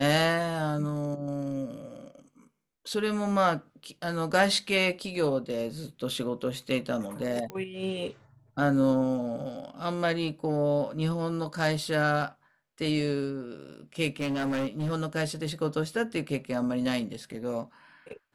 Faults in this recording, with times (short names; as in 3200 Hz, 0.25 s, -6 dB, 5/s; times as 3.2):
7.5 pop -23 dBFS
14.2–14.93 clipped -26 dBFS